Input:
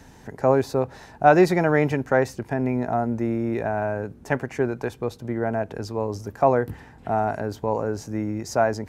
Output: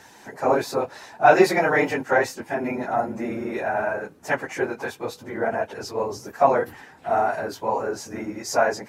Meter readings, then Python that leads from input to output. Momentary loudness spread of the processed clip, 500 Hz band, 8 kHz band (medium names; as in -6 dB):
13 LU, 0.0 dB, +5.0 dB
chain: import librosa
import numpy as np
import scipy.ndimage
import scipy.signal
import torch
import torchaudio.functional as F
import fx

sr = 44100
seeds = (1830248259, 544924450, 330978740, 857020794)

y = fx.phase_scramble(x, sr, seeds[0], window_ms=50)
y = fx.highpass(y, sr, hz=820.0, slope=6)
y = y * 10.0 ** (5.5 / 20.0)